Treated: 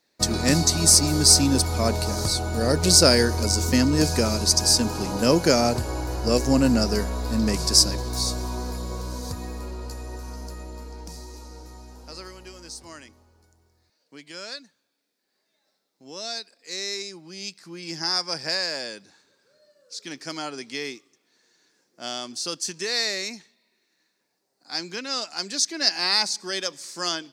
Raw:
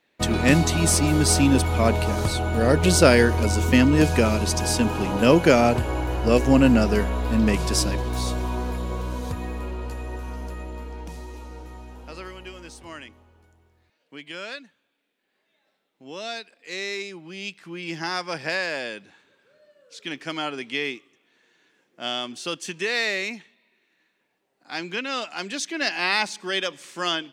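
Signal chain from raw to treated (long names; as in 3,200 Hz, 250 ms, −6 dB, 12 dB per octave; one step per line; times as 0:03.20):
high shelf with overshoot 3,800 Hz +7.5 dB, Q 3
level −3 dB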